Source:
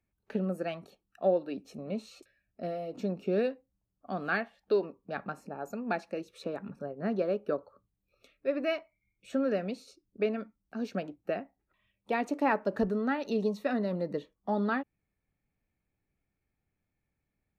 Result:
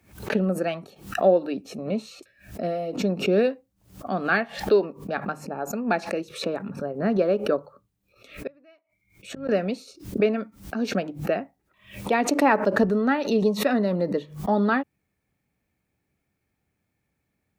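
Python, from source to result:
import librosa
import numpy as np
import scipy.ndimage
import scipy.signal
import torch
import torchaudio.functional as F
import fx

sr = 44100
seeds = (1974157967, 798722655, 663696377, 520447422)

y = fx.gate_flip(x, sr, shuts_db=-35.0, range_db=-32, at=(8.47, 9.49))
y = scipy.signal.sosfilt(scipy.signal.butter(2, 66.0, 'highpass', fs=sr, output='sos'), y)
y = fx.hum_notches(y, sr, base_hz=50, count=3)
y = fx.pre_swell(y, sr, db_per_s=130.0)
y = y * 10.0 ** (8.0 / 20.0)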